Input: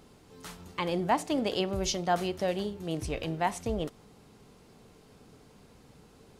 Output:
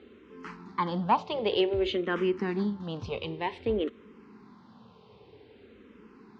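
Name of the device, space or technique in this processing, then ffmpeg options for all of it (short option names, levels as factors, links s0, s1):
barber-pole phaser into a guitar amplifier: -filter_complex "[0:a]asplit=2[s0][s1];[s1]afreqshift=-0.53[s2];[s0][s2]amix=inputs=2:normalize=1,asoftclip=type=tanh:threshold=0.1,highpass=94,equalizer=f=150:t=q:w=4:g=-9,equalizer=f=220:t=q:w=4:g=6,equalizer=f=390:t=q:w=4:g=5,equalizer=f=660:t=q:w=4:g=-9,equalizer=f=1000:t=q:w=4:g=5,lowpass=f=3800:w=0.5412,lowpass=f=3800:w=1.3066,asettb=1/sr,asplit=3[s3][s4][s5];[s3]atrim=end=3.184[s6];[s4]atrim=start=3.18:end=3.58,asetpts=PTS-STARTPTS,afade=t=in:d=0.004:c=qsin,afade=t=out:st=0.396:d=0.004:c=qsin,equalizer=f=680:t=o:w=0.77:g=-7.5[s7];[s5]atrim=start=3.576[s8];[s6][s7]acrossfade=d=0.004:c1=hsin:c2=qsin[s9];[s9][s8]acrossfade=d=0.004:c1=qsin:c2=hsin,volume=1.78"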